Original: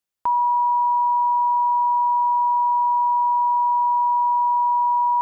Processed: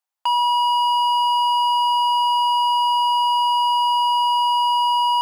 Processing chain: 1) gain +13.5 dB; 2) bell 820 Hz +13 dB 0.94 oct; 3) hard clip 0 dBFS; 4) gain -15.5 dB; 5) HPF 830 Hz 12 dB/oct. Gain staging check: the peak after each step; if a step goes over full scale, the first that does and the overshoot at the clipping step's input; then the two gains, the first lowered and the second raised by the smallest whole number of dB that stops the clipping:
-2.5, +8.5, 0.0, -15.5, -12.0 dBFS; step 2, 8.5 dB; step 1 +4.5 dB, step 4 -6.5 dB

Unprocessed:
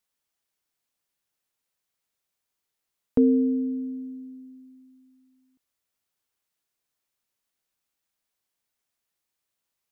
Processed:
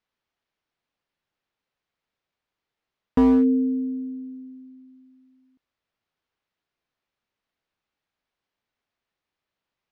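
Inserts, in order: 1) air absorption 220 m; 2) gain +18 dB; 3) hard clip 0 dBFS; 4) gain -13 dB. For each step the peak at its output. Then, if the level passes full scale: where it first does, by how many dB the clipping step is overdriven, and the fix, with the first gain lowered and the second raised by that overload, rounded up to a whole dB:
-10.5, +7.5, 0.0, -13.0 dBFS; step 2, 7.5 dB; step 2 +10 dB, step 4 -5 dB

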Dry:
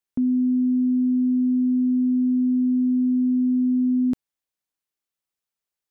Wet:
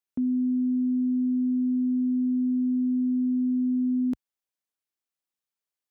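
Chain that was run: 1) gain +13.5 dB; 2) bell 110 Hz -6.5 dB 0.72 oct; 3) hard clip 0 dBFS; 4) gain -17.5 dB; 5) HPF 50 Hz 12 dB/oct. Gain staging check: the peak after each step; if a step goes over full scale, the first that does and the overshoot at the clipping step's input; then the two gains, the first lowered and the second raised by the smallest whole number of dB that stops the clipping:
-3.5, -3.5, -3.5, -21.0, -21.0 dBFS; no overload

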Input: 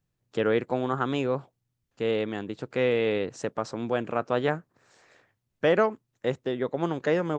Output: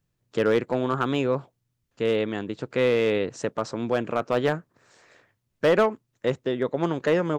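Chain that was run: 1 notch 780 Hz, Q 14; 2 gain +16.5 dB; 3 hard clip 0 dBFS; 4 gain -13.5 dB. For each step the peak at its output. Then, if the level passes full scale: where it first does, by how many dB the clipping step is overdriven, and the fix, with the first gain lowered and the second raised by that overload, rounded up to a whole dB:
-11.0, +5.5, 0.0, -13.5 dBFS; step 2, 5.5 dB; step 2 +10.5 dB, step 4 -7.5 dB

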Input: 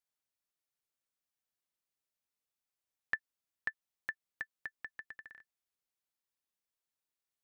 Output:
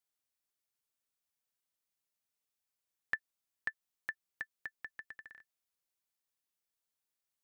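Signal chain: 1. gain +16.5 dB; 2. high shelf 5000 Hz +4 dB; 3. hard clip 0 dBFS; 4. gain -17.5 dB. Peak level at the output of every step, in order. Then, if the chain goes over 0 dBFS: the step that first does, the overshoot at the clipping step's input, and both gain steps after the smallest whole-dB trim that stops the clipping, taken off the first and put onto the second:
-3.0, -2.5, -2.5, -20.0 dBFS; no overload

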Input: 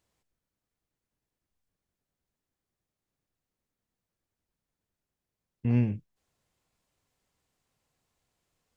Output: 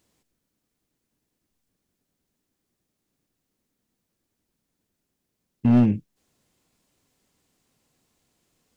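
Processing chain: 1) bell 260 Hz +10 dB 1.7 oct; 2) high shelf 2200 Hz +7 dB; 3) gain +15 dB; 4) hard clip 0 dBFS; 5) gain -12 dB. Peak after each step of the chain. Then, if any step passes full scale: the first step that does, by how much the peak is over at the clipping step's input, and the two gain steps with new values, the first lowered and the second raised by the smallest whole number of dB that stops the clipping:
-8.0, -7.5, +7.5, 0.0, -12.0 dBFS; step 3, 7.5 dB; step 3 +7 dB, step 5 -4 dB

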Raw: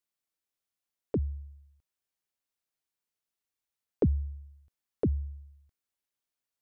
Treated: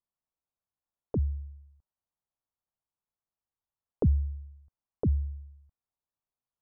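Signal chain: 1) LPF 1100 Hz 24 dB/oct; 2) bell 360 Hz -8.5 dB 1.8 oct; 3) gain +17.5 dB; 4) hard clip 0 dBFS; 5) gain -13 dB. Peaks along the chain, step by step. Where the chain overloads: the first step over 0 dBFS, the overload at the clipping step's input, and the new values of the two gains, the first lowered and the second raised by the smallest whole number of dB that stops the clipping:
-17.0, -21.0, -3.5, -3.5, -16.5 dBFS; no overload

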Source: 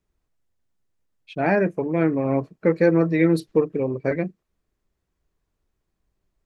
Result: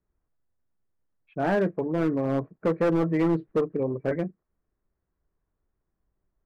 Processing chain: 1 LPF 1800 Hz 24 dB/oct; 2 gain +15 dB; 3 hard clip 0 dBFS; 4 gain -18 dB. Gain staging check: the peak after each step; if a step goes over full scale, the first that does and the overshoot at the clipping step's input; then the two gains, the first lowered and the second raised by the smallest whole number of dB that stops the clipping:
-6.0, +9.0, 0.0, -18.0 dBFS; step 2, 9.0 dB; step 2 +6 dB, step 4 -9 dB

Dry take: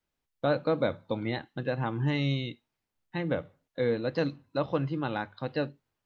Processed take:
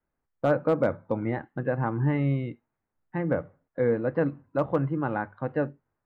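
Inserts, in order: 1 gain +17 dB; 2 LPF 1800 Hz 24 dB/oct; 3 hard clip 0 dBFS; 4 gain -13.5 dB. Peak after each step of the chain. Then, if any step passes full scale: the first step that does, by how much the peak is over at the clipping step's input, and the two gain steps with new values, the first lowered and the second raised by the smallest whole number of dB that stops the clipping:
+3.0, +3.0, 0.0, -13.5 dBFS; step 1, 3.0 dB; step 1 +14 dB, step 4 -10.5 dB

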